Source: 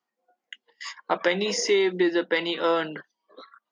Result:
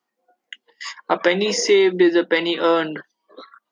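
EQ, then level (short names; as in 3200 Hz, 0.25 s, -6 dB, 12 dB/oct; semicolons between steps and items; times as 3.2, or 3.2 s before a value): bell 320 Hz +3 dB 0.77 oct; +5.0 dB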